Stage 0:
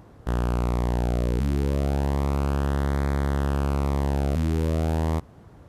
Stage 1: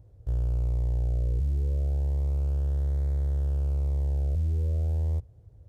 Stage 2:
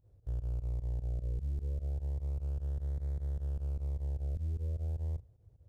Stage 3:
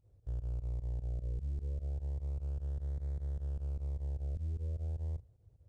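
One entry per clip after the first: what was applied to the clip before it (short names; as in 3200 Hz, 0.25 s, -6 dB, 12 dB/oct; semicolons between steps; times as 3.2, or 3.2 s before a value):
EQ curve 110 Hz 0 dB, 210 Hz -23 dB, 510 Hz -11 dB, 1100 Hz -28 dB, 6900 Hz -16 dB
pump 151 bpm, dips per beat 2, -22 dB, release 75 ms; gain -8 dB
downsampling 22050 Hz; gain -2 dB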